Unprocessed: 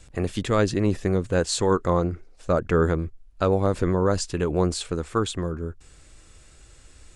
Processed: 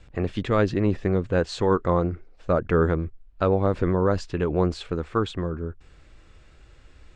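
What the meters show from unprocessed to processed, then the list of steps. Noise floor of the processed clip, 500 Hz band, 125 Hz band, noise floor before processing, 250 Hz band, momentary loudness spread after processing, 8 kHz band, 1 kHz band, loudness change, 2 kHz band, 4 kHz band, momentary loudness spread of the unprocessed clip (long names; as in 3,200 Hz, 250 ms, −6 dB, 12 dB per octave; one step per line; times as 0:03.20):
−52 dBFS, 0.0 dB, 0.0 dB, −51 dBFS, 0.0 dB, 8 LU, below −10 dB, 0.0 dB, 0.0 dB, −0.5 dB, −5.5 dB, 8 LU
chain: low-pass filter 3,200 Hz 12 dB per octave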